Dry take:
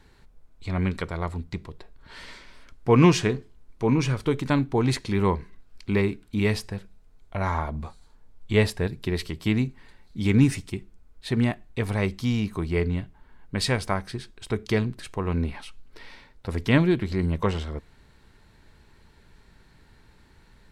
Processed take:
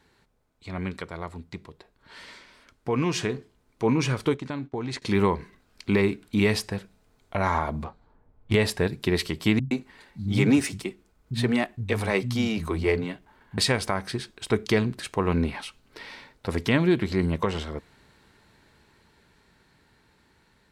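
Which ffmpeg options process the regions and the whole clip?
-filter_complex "[0:a]asettb=1/sr,asplit=3[s0][s1][s2];[s0]atrim=end=4.344[s3];[s1]atrim=start=4.34:end=5.02,asetpts=PTS-STARTPTS,afade=t=in:d=0.004:c=qsin,afade=t=out:st=0.676:d=0.004:c=qsin,agate=range=0.0224:threshold=0.0398:ratio=3:release=100:detection=peak,lowpass=7100,acompressor=threshold=0.0316:ratio=6:attack=3.2:release=140:knee=1:detection=peak[s4];[s2]atrim=start=5.016[s5];[s3][s4]acrossfade=d=0.004:c1=hsin:c2=qsin[s6];[s6][s5]acrossfade=d=0.004:c1=qsin:c2=hsin,asettb=1/sr,asplit=3[s7][s8][s9];[s7]atrim=end=7.844[s10];[s8]atrim=start=7.84:end=8.55,asetpts=PTS-STARTPTS,afade=t=in:d=0.004:c=qsin,afade=t=out:st=0.706:d=0.004:c=qsin,asubboost=boost=7.5:cutoff=130,adynamicsmooth=sensitivity=4.5:basefreq=1400[s11];[s9]atrim=start=8.546[s12];[s10][s11]acrossfade=d=0.004:c1=hsin:c2=qsin[s13];[s13][s12]acrossfade=d=0.004:c1=qsin:c2=hsin,asettb=1/sr,asplit=3[s14][s15][s16];[s14]atrim=end=9.594[s17];[s15]atrim=start=9.59:end=13.58,asetpts=PTS-STARTPTS,afade=t=in:d=0.004:c=qsin,afade=t=out:st=3.986:d=0.004:c=qsin,aeval=exprs='if(lt(val(0),0),0.708*val(0),val(0))':c=same,acrossover=split=180[s18][s19];[s19]adelay=120[s20];[s18][s20]amix=inputs=2:normalize=0,atrim=end_sample=175959[s21];[s16]atrim=start=13.576[s22];[s17][s21]acrossfade=d=0.004:c1=hsin:c2=qsin[s23];[s23][s22]acrossfade=d=0.004:c1=qsin:c2=hsin,highpass=f=170:p=1,alimiter=limit=0.158:level=0:latency=1:release=134,dynaudnorm=f=710:g=11:m=2.66,volume=0.708"

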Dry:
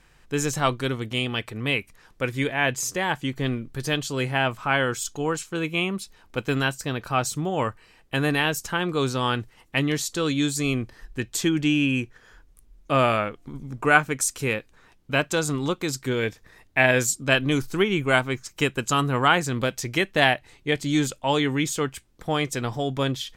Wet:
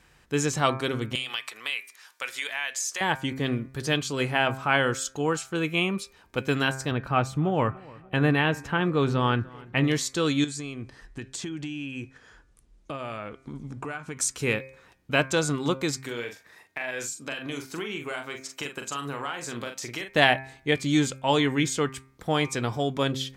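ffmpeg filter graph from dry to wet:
-filter_complex "[0:a]asettb=1/sr,asplit=3[s0][s1][s2];[s0]atrim=end=1.154[s3];[s1]atrim=start=1.15:end=3.01,asetpts=PTS-STARTPTS,afade=t=in:d=0.004:c=qsin,afade=t=out:st=1.856:d=0.004:c=qsin,highpass=920,highshelf=f=2200:g=10,acompressor=threshold=0.0398:ratio=3:attack=3.2:release=140:knee=1:detection=peak[s4];[s2]atrim=start=3.006[s5];[s3][s4]acrossfade=d=0.004:c1=hsin:c2=qsin[s6];[s6][s5]acrossfade=d=0.004:c1=qsin:c2=hsin,asettb=1/sr,asplit=3[s7][s8][s9];[s7]atrim=end=6.914[s10];[s8]atrim=start=6.91:end=9.84,asetpts=PTS-STARTPTS,afade=t=in:d=0.004:c=qsin,afade=t=out:st=2.926:d=0.004:c=qsin,bass=f=250:g=4,treble=f=4000:g=-15,asplit=2[s11][s12];[s12]adelay=292,lowpass=f=2400:p=1,volume=0.0794,asplit=2[s13][s14];[s14]adelay=292,lowpass=f=2400:p=1,volume=0.52,asplit=2[s15][s16];[s16]adelay=292,lowpass=f=2400:p=1,volume=0.52,asplit=2[s17][s18];[s18]adelay=292,lowpass=f=2400:p=1,volume=0.52[s19];[s11][s13][s15][s17][s19]amix=inputs=5:normalize=0,atrim=end_sample=129213[s20];[s9]atrim=start=9.836[s21];[s10][s20]acrossfade=d=0.004:c1=hsin:c2=qsin[s22];[s22][s21]acrossfade=d=0.004:c1=qsin:c2=hsin,asettb=1/sr,asplit=3[s23][s24][s25];[s23]atrim=end=10.444[s26];[s24]atrim=start=10.44:end=14.17,asetpts=PTS-STARTPTS,afade=t=in:d=0.004:c=qsin,afade=t=out:st=3.726:d=0.004:c=qsin,lowpass=f=10000:w=0.5412,lowpass=f=10000:w=1.3066,acompressor=threshold=0.0316:ratio=12:attack=3.2:release=140:knee=1:detection=peak[s27];[s25]atrim=start=14.166[s28];[s26][s27]acrossfade=d=0.004:c1=hsin:c2=qsin[s29];[s29][s28]acrossfade=d=0.004:c1=qsin:c2=hsin,asettb=1/sr,asplit=3[s30][s31][s32];[s30]atrim=end=15.994[s33];[s31]atrim=start=15.99:end=20.09,asetpts=PTS-STARTPTS,afade=t=in:d=0.004:c=qsin,afade=t=out:st=4.096:d=0.004:c=qsin,highpass=f=470:p=1,acompressor=threshold=0.0316:ratio=5:attack=3.2:release=140:knee=1:detection=peak,asplit=2[s34][s35];[s35]adelay=42,volume=0.473[s36];[s34][s36]amix=inputs=2:normalize=0,atrim=end_sample=180810[s37];[s32]atrim=start=20.086[s38];[s33][s37]acrossfade=d=0.004:c1=hsin:c2=qsin[s39];[s39][s38]acrossfade=d=0.004:c1=qsin:c2=hsin,highpass=48,bandreject=f=132.7:t=h:w=4,bandreject=f=265.4:t=h:w=4,bandreject=f=398.1:t=h:w=4,bandreject=f=530.8:t=h:w=4,bandreject=f=663.5:t=h:w=4,bandreject=f=796.2:t=h:w=4,bandreject=f=928.9:t=h:w=4,bandreject=f=1061.6:t=h:w=4,bandreject=f=1194.3:t=h:w=4,bandreject=f=1327:t=h:w=4,bandreject=f=1459.7:t=h:w=4,bandreject=f=1592.4:t=h:w=4,bandreject=f=1725.1:t=h:w=4,bandreject=f=1857.8:t=h:w=4,bandreject=f=1990.5:t=h:w=4,bandreject=f=2123.2:t=h:w=4,bandreject=f=2255.9:t=h:w=4,bandreject=f=2388.6:t=h:w=4,bandreject=f=2521.3:t=h:w=4,acrossover=split=9800[s40][s41];[s41]acompressor=threshold=0.002:ratio=4:attack=1:release=60[s42];[s40][s42]amix=inputs=2:normalize=0"

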